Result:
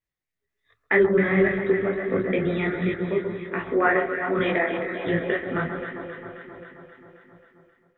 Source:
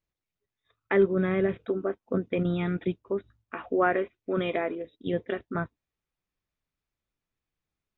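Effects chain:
feedback delay that plays each chunk backwards 270 ms, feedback 52%, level −13 dB
parametric band 1,900 Hz +11 dB 0.34 octaves
delay that swaps between a low-pass and a high-pass 133 ms, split 1,300 Hz, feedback 81%, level −6.5 dB
automatic gain control gain up to 7 dB
micro pitch shift up and down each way 47 cents

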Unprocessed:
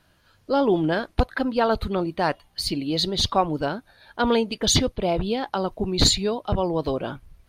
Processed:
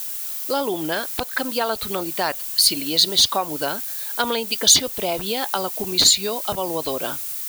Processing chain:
in parallel at −11.5 dB: bit-depth reduction 6 bits, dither triangular
on the sum: downward compressor 3 to 1, threshold −21 dBFS, peak gain reduction 8 dB
RIAA equalisation recording
level +2.5 dB

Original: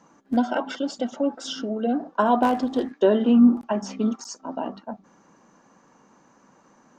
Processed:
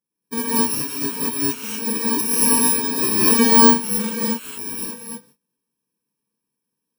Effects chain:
samples in bit-reversed order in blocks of 64 samples
noise gate −50 dBFS, range −27 dB
reverb whose tail is shaped and stops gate 260 ms rising, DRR −7.5 dB
level −5 dB

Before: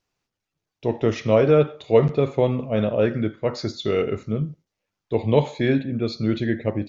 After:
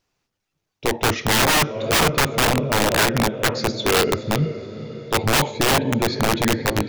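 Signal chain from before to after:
feedback delay with all-pass diffusion 489 ms, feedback 56%, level −13.5 dB
wrap-around overflow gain 16 dB
level +4.5 dB

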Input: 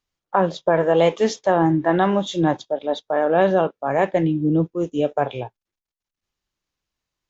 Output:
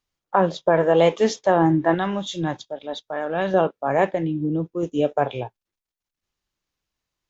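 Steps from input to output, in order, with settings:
0:01.94–0:03.54: parametric band 480 Hz −8.5 dB 2.9 octaves
0:04.08–0:04.83: downward compressor 3 to 1, threshold −22 dBFS, peak gain reduction 6.5 dB

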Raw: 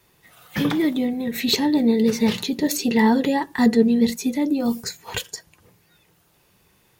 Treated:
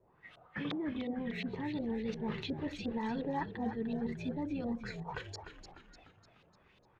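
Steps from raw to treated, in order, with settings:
reversed playback
downward compressor 5 to 1, threshold −29 dBFS, peak gain reduction 16 dB
reversed playback
auto-filter low-pass saw up 2.8 Hz 520–3,700 Hz
echo with shifted repeats 299 ms, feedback 51%, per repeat −67 Hz, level −9 dB
level −7.5 dB

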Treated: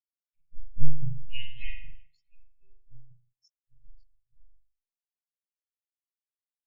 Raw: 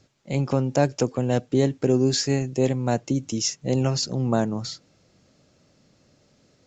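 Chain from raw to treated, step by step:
0:01.12–0:01.78: flat-topped bell 2,000 Hz +13 dB
power curve on the samples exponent 2
harmonic and percussive parts rebalanced harmonic −14 dB
drawn EQ curve 110 Hz 0 dB, 260 Hz −20 dB, 1,500 Hz −13 dB, 2,500 Hz +4 dB
on a send: single-tap delay 644 ms −18.5 dB
on the sum: spring reverb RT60 2.3 s, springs 41 ms, chirp 70 ms, DRR −6 dB
leveller curve on the samples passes 2
every bin expanded away from the loudest bin 4 to 1
level +4.5 dB

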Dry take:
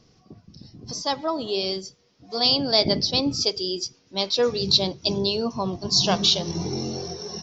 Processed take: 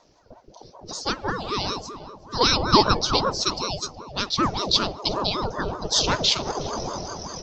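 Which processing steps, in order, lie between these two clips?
0:02.39–0:03.17: parametric band 720 Hz +11 dB 0.67 octaves
feedback echo with a low-pass in the loop 368 ms, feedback 37%, low-pass 860 Hz, level −9 dB
ring modulator whose carrier an LFO sweeps 520 Hz, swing 60%, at 5.2 Hz
level +1.5 dB

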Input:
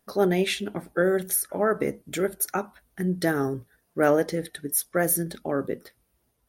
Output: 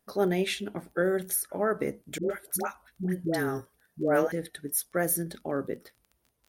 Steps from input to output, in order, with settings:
0:02.18–0:04.32: all-pass dispersion highs, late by 123 ms, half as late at 610 Hz
surface crackle 19 per second −39 dBFS
level −4 dB

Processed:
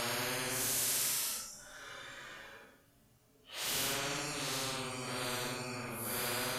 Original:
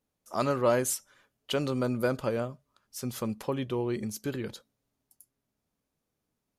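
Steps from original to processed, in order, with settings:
extreme stretch with random phases 4.7×, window 0.10 s, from 0:00.71
every bin compressed towards the loudest bin 4 to 1
level −6.5 dB

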